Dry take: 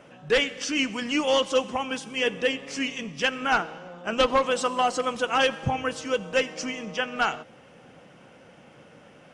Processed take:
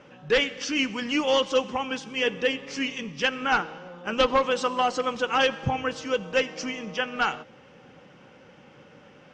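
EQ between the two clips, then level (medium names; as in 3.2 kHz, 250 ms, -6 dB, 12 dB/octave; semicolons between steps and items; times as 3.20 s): Butterworth band-stop 670 Hz, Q 7; low-pass 6.4 kHz 24 dB/octave; 0.0 dB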